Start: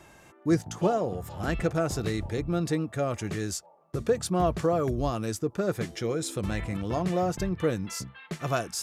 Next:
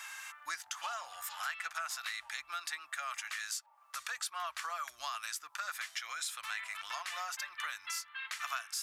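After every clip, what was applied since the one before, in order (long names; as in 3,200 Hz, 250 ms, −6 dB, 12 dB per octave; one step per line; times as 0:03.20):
inverse Chebyshev high-pass filter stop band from 460 Hz, stop band 50 dB
dynamic equaliser 7,100 Hz, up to −5 dB, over −48 dBFS, Q 0.86
downward compressor 3 to 1, threshold −52 dBFS, peak gain reduction 16.5 dB
level +12 dB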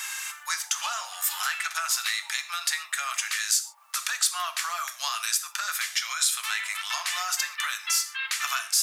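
high-pass filter 590 Hz 24 dB per octave
high-shelf EQ 2,400 Hz +12 dB
reverb whose tail is shaped and stops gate 160 ms falling, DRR 8 dB
level +4.5 dB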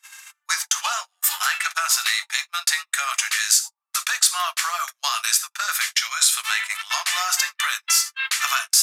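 noise gate −31 dBFS, range −39 dB
level +6.5 dB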